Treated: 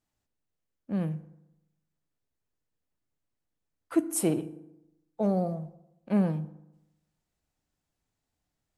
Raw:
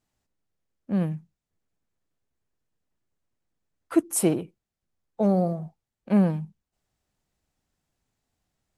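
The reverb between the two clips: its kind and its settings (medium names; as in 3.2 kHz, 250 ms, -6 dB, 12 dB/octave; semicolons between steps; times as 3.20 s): FDN reverb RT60 0.9 s, low-frequency decay 1.1×, high-frequency decay 0.6×, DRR 12.5 dB; trim -4.5 dB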